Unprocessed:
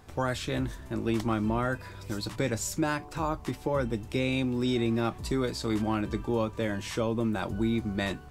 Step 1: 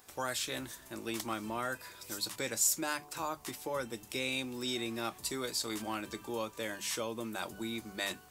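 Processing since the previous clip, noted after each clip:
RIAA equalisation recording
mains-hum notches 50/100/150/200 Hz
level −5.5 dB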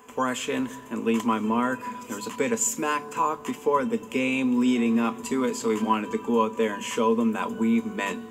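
hollow resonant body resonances 240/440/1,000 Hz, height 17 dB, ringing for 85 ms
convolution reverb RT60 3.6 s, pre-delay 3 ms, DRR 19 dB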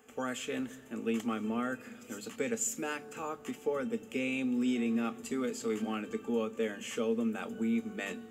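Butterworth band-reject 1,000 Hz, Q 4.5
level −8.5 dB

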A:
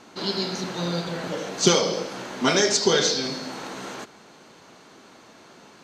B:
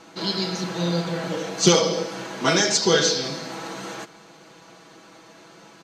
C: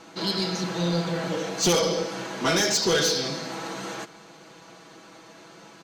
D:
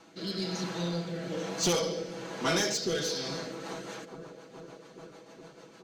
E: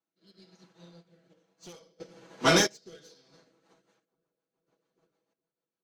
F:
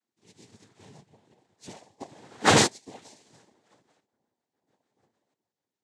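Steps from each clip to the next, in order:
comb filter 6.1 ms
soft clipping −16.5 dBFS, distortion −11 dB
bucket-brigade delay 419 ms, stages 4,096, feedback 79%, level −15 dB; rotating-speaker cabinet horn 1.1 Hz, later 6.7 Hz, at 0:03.23; level −5 dB
sample-and-hold tremolo 1.5 Hz, depth 75%; expander for the loud parts 2.5 to 1, over −50 dBFS; level +7.5 dB
cochlear-implant simulation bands 6; level +3.5 dB

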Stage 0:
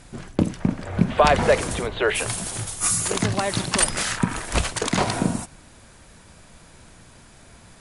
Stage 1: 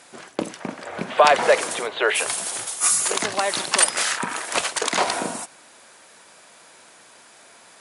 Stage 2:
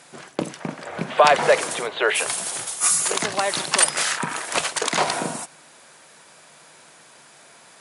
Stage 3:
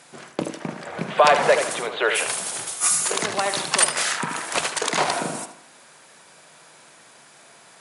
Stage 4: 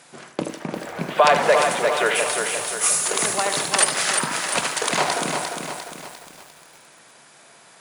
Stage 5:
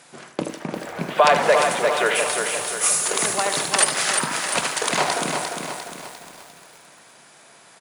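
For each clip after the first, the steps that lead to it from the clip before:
high-pass filter 480 Hz 12 dB per octave; level +3 dB
parametric band 150 Hz +12 dB 0.24 octaves
tape delay 76 ms, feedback 39%, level −7 dB, low-pass 3,000 Hz; level −1 dB
feedback echo at a low word length 350 ms, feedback 55%, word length 7 bits, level −5 dB
repeating echo 639 ms, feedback 35%, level −21 dB

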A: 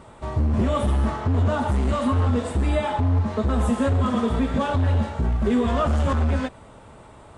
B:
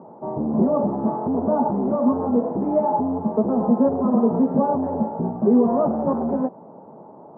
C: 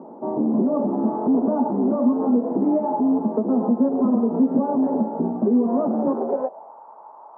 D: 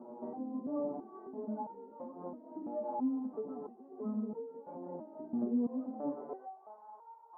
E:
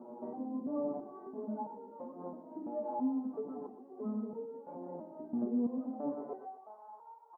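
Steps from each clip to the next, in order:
elliptic band-pass filter 170–880 Hz, stop band 70 dB; level +6 dB
downward compressor, threshold −21 dBFS, peak gain reduction 9 dB; high-pass filter sweep 260 Hz → 990 Hz, 0:06.03–0:06.77
downward compressor 3 to 1, threshold −29 dBFS, peak gain reduction 11.5 dB; step-sequenced resonator 3 Hz 120–460 Hz; level +1.5 dB
repeating echo 120 ms, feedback 30%, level −11.5 dB

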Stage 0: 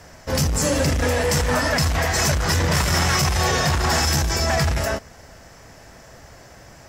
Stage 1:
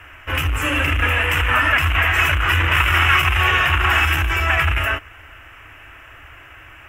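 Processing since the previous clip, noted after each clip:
drawn EQ curve 100 Hz 0 dB, 200 Hz −24 dB, 300 Hz −1 dB, 500 Hz −11 dB, 850 Hz −4 dB, 1,300 Hz +8 dB, 1,900 Hz +5 dB, 2,800 Hz +14 dB, 4,400 Hz −24 dB, 13,000 Hz −3 dB
level +2 dB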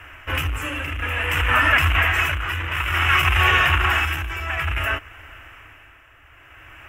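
amplitude tremolo 0.57 Hz, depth 66%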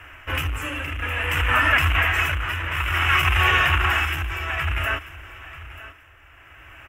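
repeating echo 937 ms, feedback 22%, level −16.5 dB
level −1.5 dB

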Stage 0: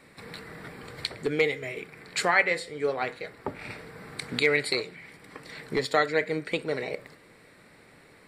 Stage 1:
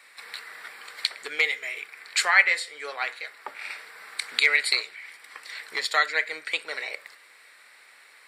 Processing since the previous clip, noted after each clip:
high-pass filter 1,300 Hz 12 dB per octave
level +6 dB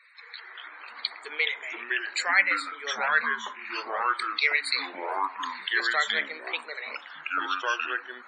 spectral peaks only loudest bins 64
delay with pitch and tempo change per echo 149 ms, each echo −4 semitones, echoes 3
level −3.5 dB

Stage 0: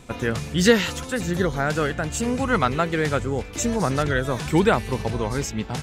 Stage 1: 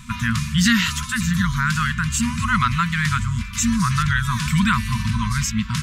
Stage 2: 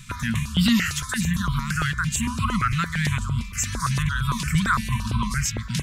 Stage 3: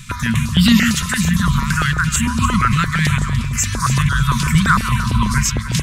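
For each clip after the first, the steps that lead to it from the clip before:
brick-wall band-stop 240–950 Hz; in parallel at +1.5 dB: brickwall limiter −19.5 dBFS, peak gain reduction 12 dB
step-sequenced phaser 8.8 Hz 230–1,800 Hz
delay that swaps between a low-pass and a high-pass 148 ms, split 1,200 Hz, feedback 53%, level −6 dB; level +7 dB

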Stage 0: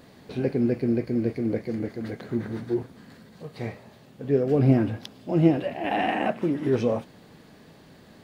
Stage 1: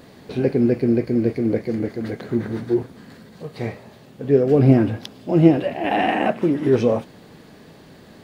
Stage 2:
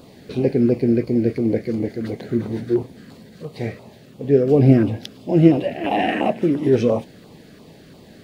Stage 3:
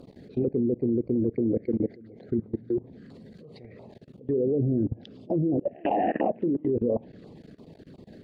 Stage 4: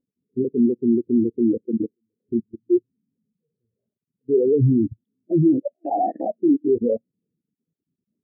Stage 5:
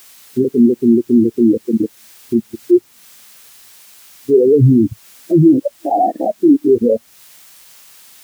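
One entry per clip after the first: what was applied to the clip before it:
parametric band 400 Hz +2 dB; level +5 dB
auto-filter notch saw down 2.9 Hz 750–1,900 Hz; level +1 dB
spectral envelope exaggerated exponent 1.5; treble cut that deepens with the level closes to 540 Hz, closed at −13 dBFS; output level in coarse steps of 23 dB; level −1 dB
every bin expanded away from the loudest bin 2.5 to 1; level +4.5 dB
bit-depth reduction 10 bits, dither triangular; one half of a high-frequency compander encoder only; level +7.5 dB

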